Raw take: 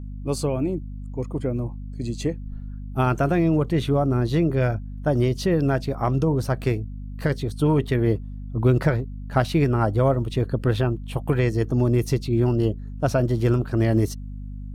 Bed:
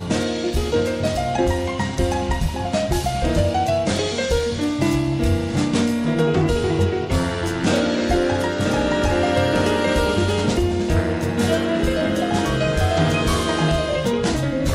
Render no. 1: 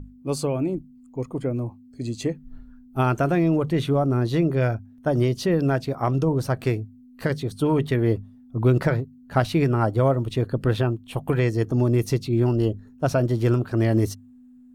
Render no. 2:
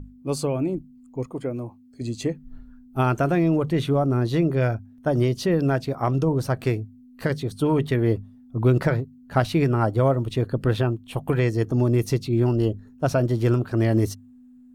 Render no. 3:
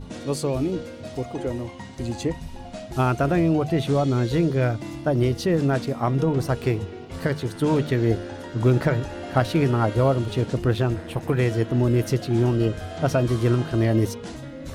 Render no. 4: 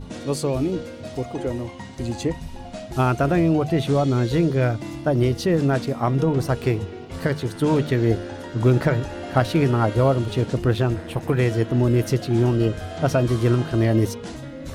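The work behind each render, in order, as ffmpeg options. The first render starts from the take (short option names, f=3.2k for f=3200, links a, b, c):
-af "bandreject=f=50:t=h:w=6,bandreject=f=100:t=h:w=6,bandreject=f=150:t=h:w=6,bandreject=f=200:t=h:w=6"
-filter_complex "[0:a]asettb=1/sr,asplit=3[a][b][c];[a]atrim=end=1.274[d];[b]atrim=start=1.27:end=2.01,asetpts=PTS-STARTPTS,afade=t=in:d=0.004:c=qsin,afade=t=out:st=0.736:d=0.004:c=qsin,lowshelf=f=180:g=-9[e];[c]atrim=start=2.006[f];[d][e]acrossfade=d=0.004:c1=hsin:c2=qsin[g];[g][f]acrossfade=d=0.004:c1=qsin:c2=hsin"
-filter_complex "[1:a]volume=-15.5dB[a];[0:a][a]amix=inputs=2:normalize=0"
-af "volume=1.5dB"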